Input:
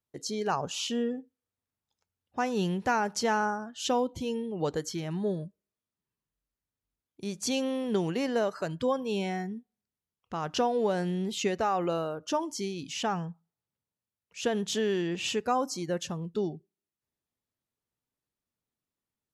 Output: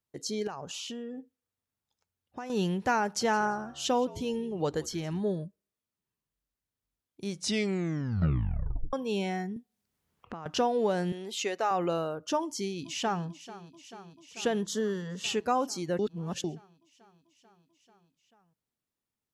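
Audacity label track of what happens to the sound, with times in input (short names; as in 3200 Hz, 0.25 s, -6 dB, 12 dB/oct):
0.470000	2.500000	compressor 10:1, threshold -35 dBFS
3.040000	5.200000	frequency-shifting echo 0.169 s, feedback 31%, per repeat -69 Hz, level -20 dB
7.260000	7.260000	tape stop 1.67 s
9.560000	10.460000	three-band squash depth 100%
11.120000	11.710000	HPF 420 Hz
12.410000	13.250000	echo throw 0.44 s, feedback 80%, level -16 dB
14.660000	15.240000	fixed phaser centre 500 Hz, stages 8
15.990000	16.440000	reverse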